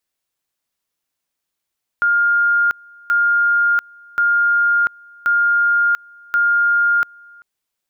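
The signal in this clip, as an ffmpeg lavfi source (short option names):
-f lavfi -i "aevalsrc='pow(10,(-12-28*gte(mod(t,1.08),0.69))/20)*sin(2*PI*1410*t)':d=5.4:s=44100"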